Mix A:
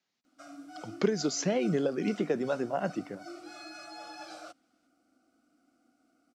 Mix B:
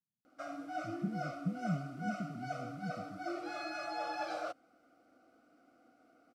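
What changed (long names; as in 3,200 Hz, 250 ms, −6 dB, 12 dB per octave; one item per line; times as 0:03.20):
speech: add inverse Chebyshev low-pass filter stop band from 620 Hz, stop band 60 dB
background: add graphic EQ with 10 bands 125 Hz +6 dB, 250 Hz −3 dB, 500 Hz +10 dB, 1,000 Hz +5 dB, 2,000 Hz +5 dB, 8,000 Hz −6 dB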